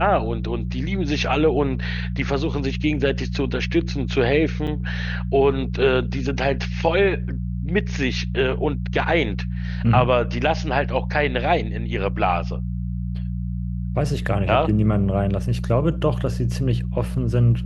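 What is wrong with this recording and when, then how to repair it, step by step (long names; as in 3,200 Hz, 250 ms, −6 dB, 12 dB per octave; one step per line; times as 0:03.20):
mains hum 60 Hz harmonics 3 −26 dBFS
0:04.67–0:04.68: drop-out 5.3 ms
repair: hum removal 60 Hz, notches 3
repair the gap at 0:04.67, 5.3 ms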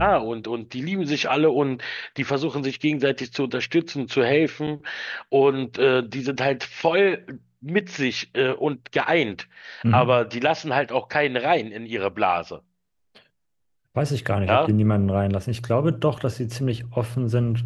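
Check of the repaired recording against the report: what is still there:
none of them is left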